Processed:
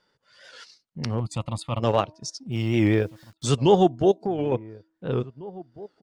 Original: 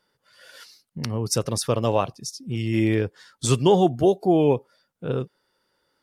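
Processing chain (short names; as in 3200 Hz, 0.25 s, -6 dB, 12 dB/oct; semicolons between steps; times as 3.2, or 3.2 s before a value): LPF 7500 Hz 24 dB/oct; de-hum 321.6 Hz, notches 3; 4.11–4.52 compressor 4:1, threshold -25 dBFS, peak gain reduction 9.5 dB; transient shaper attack -6 dB, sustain -10 dB; 1.2–1.8 fixed phaser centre 1600 Hz, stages 6; 2.52–3.49 requantised 10-bit, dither none; outdoor echo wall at 300 m, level -20 dB; record warp 78 rpm, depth 100 cents; gain +2 dB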